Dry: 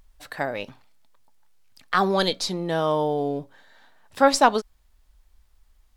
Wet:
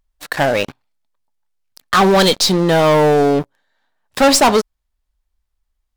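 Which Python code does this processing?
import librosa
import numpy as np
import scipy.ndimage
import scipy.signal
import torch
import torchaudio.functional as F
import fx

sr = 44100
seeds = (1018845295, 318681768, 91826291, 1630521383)

y = fx.leveller(x, sr, passes=5)
y = y * 10.0 ** (-3.0 / 20.0)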